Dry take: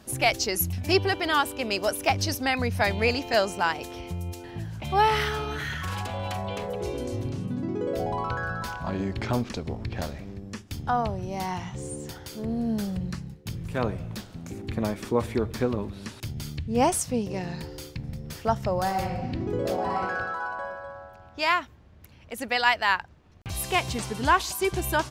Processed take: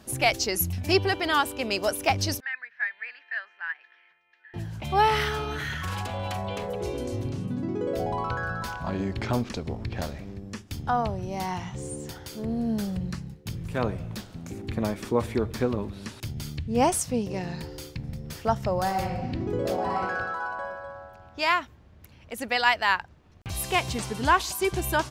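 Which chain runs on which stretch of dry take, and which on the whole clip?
0:02.40–0:04.54: four-pole ladder band-pass 1,800 Hz, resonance 85% + high-frequency loss of the air 240 metres
whole clip: no processing

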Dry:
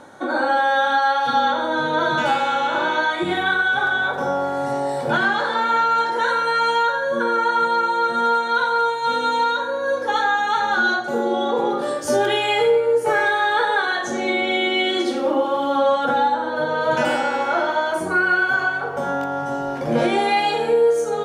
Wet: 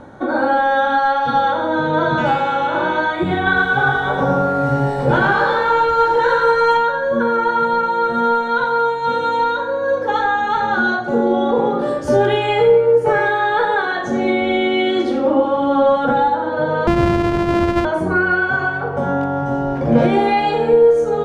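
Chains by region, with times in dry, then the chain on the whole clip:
0:03.45–0:06.77: double-tracking delay 15 ms −2.5 dB + feedback echo at a low word length 113 ms, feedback 35%, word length 7 bits, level −4.5 dB
0:16.87–0:17.85: samples sorted by size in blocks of 128 samples + low-pass filter 3,600 Hz 6 dB per octave
whole clip: RIAA equalisation playback; mains-hum notches 50/100/150/200/250/300/350 Hz; level +2 dB

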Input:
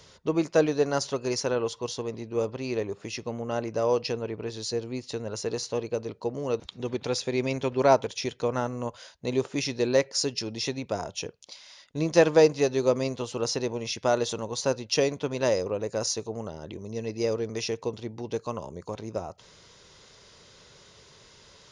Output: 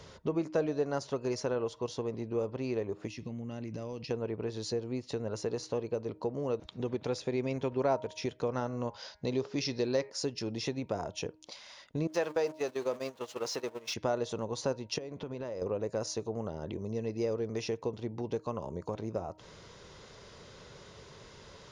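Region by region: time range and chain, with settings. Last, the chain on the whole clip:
0:03.07–0:04.11: flat-topped bell 760 Hz −11 dB 2.3 octaves + downward compressor, threshold −38 dBFS
0:08.47–0:10.10: low-pass with resonance 5,100 Hz, resonance Q 3.1 + hum removal 206.2 Hz, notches 12
0:12.07–0:13.94: converter with a step at zero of −33.5 dBFS + high-pass filter 810 Hz 6 dB per octave + noise gate −35 dBFS, range −17 dB
0:14.98–0:15.62: high-shelf EQ 6,900 Hz −10 dB + downward compressor, threshold −38 dBFS
whole clip: high-shelf EQ 2,300 Hz −10 dB; hum removal 312.4 Hz, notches 3; downward compressor 2 to 1, threshold −42 dBFS; level +5 dB

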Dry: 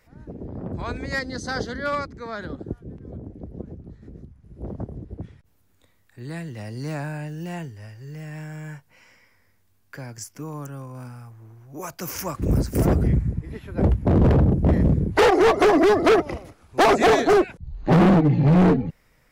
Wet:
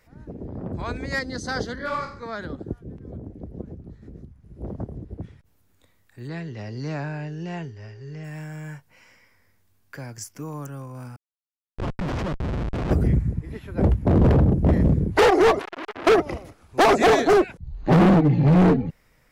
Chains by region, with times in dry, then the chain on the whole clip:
0:01.75–0:02.23: parametric band 970 Hz +7.5 dB 0.29 octaves + flutter between parallel walls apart 8.1 metres, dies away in 0.46 s + micro pitch shift up and down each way 44 cents
0:06.27–0:08.23: Butterworth low-pass 6,300 Hz + steady tone 410 Hz −49 dBFS
0:11.16–0:12.91: comparator with hysteresis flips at −27.5 dBFS + head-to-tape spacing loss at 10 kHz 22 dB
0:15.59–0:16.07: mains-hum notches 60/120/180/240/300 Hz + downward compressor 12 to 1, threshold −23 dBFS + saturating transformer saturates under 2,300 Hz
whole clip: no processing

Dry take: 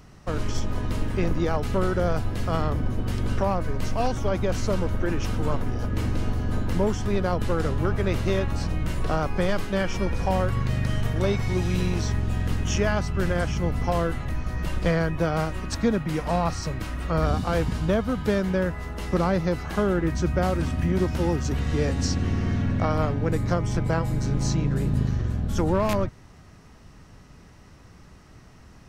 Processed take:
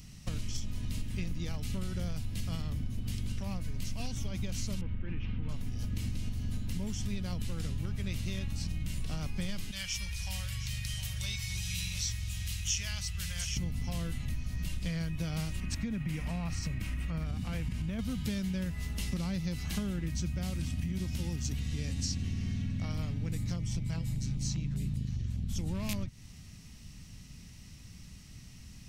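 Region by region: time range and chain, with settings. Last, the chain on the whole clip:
0:04.81–0:05.49: low-pass filter 2,700 Hz 24 dB per octave + parametric band 660 Hz −7 dB 0.24 octaves
0:09.71–0:13.57: high-pass filter 41 Hz + guitar amp tone stack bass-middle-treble 10-0-10 + single-tap delay 712 ms −11.5 dB
0:15.60–0:17.99: high shelf with overshoot 3,000 Hz −7 dB, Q 1.5 + downward compressor 2.5 to 1, threshold −24 dBFS
0:23.56–0:25.64: high-shelf EQ 8,000 Hz −4.5 dB + auto-filter notch saw down 5 Hz 240–2,100 Hz
whole clip: flat-topped bell 730 Hz −14.5 dB 2.7 octaves; downward compressor, threshold −31 dBFS; high-shelf EQ 4,200 Hz +8 dB

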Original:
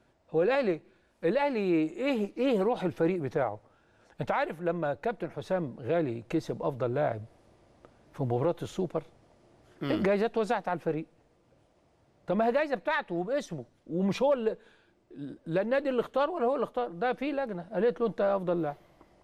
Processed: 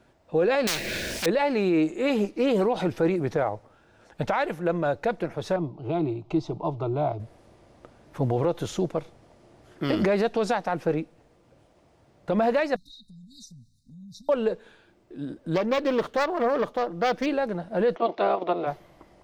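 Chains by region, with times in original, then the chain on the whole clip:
0:00.67–0:01.26: mu-law and A-law mismatch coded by mu + flat-topped bell 1,000 Hz −14.5 dB 1.1 octaves + every bin compressed towards the loudest bin 10 to 1
0:05.56–0:07.20: low-pass filter 3,700 Hz + phaser with its sweep stopped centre 340 Hz, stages 8
0:12.76–0:14.29: linear-phase brick-wall band-stop 270–3,600 Hz + parametric band 270 Hz −10 dB 1.8 octaves + downward compressor 4 to 1, threshold −52 dBFS
0:15.54–0:17.26: phase distortion by the signal itself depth 0.19 ms + linearly interpolated sample-rate reduction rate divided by 2×
0:17.95–0:18.66: ceiling on every frequency bin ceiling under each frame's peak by 16 dB + output level in coarse steps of 9 dB + loudspeaker in its box 280–4,200 Hz, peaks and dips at 370 Hz +5 dB, 670 Hz +8 dB, 1,600 Hz −8 dB, 2,300 Hz +3 dB
whole clip: dynamic equaliser 5,500 Hz, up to +6 dB, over −60 dBFS, Q 1.7; brickwall limiter −21 dBFS; level +6 dB

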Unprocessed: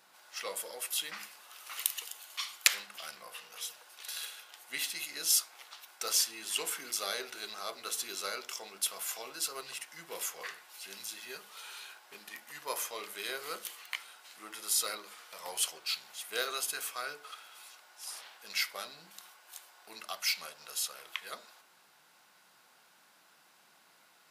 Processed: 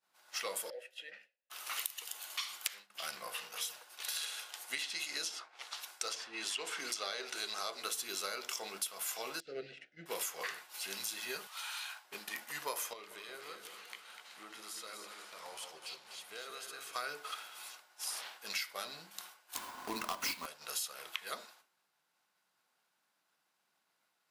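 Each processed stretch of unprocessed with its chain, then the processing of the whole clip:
0:00.70–0:01.50: formant filter e + parametric band 74 Hz +12.5 dB 1.6 octaves
0:04.15–0:07.83: bass and treble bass −6 dB, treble +4 dB + treble cut that deepens with the level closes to 1,700 Hz, closed at −24 dBFS
0:09.40–0:10.06: Butterworth band-reject 1,000 Hz, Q 0.88 + compressor whose output falls as the input rises −42 dBFS + head-to-tape spacing loss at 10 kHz 43 dB
0:11.47–0:12.05: high-pass filter 700 Hz 24 dB per octave + high-shelf EQ 7,900 Hz −2.5 dB
0:12.93–0:16.95: high-shelf EQ 9,300 Hz −12 dB + downward compressor 4 to 1, threshold −51 dBFS + echo with a time of its own for lows and highs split 1,100 Hz, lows 180 ms, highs 248 ms, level −6 dB
0:19.55–0:20.46: each half-wave held at its own peak + hollow resonant body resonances 260/1,000 Hz, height 13 dB, ringing for 35 ms
whole clip: downward compressor 10 to 1, threshold −40 dBFS; downward expander −50 dBFS; level +5 dB

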